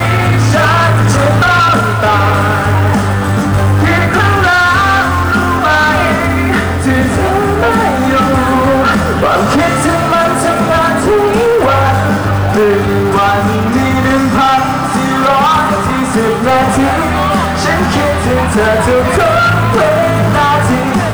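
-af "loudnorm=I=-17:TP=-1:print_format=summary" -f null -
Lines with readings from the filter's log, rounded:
Input Integrated:    -10.3 LUFS
Input True Peak:      -5.5 dBTP
Input LRA:             1.0 LU
Input Threshold:     -20.3 LUFS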